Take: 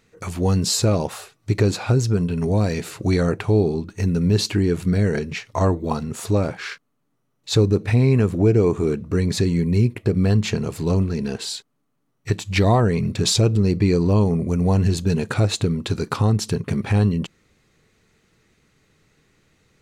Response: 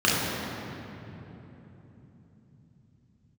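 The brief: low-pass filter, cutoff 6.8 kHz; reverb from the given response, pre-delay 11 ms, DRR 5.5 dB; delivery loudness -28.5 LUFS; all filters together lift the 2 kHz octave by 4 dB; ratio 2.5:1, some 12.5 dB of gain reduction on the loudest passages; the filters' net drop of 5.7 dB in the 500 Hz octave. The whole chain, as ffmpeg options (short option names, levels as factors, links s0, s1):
-filter_complex "[0:a]lowpass=6800,equalizer=f=500:t=o:g=-7.5,equalizer=f=2000:t=o:g=5.5,acompressor=threshold=0.0224:ratio=2.5,asplit=2[s0][s1];[1:a]atrim=start_sample=2205,adelay=11[s2];[s1][s2]afir=irnorm=-1:irlink=0,volume=0.0631[s3];[s0][s3]amix=inputs=2:normalize=0,volume=1.12"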